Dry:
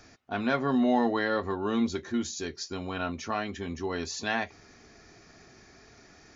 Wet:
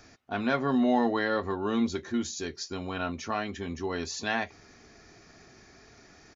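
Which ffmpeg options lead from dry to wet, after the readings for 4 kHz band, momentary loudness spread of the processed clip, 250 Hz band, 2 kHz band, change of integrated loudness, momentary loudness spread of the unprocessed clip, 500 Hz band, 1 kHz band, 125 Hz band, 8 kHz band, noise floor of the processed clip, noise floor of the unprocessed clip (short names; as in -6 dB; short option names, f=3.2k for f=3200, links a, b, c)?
0.0 dB, 11 LU, 0.0 dB, 0.0 dB, 0.0 dB, 11 LU, 0.0 dB, 0.0 dB, 0.0 dB, n/a, -56 dBFS, -56 dBFS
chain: -af "aresample=32000,aresample=44100"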